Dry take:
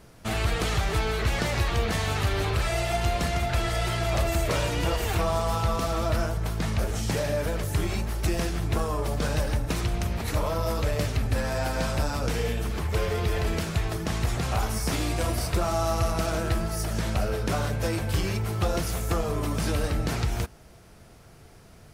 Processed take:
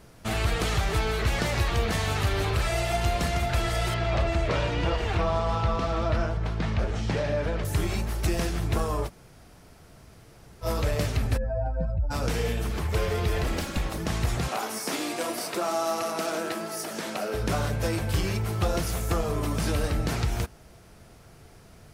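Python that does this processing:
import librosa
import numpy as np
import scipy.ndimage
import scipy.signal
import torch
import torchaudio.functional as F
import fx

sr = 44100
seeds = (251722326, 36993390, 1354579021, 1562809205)

y = fx.lowpass(x, sr, hz=3900.0, slope=12, at=(3.94, 7.65))
y = fx.spec_expand(y, sr, power=2.5, at=(11.36, 12.1), fade=0.02)
y = fx.lower_of_two(y, sr, delay_ms=3.6, at=(13.43, 13.98))
y = fx.highpass(y, sr, hz=230.0, slope=24, at=(14.48, 17.34))
y = fx.edit(y, sr, fx.room_tone_fill(start_s=9.07, length_s=1.57, crossfade_s=0.06), tone=tone)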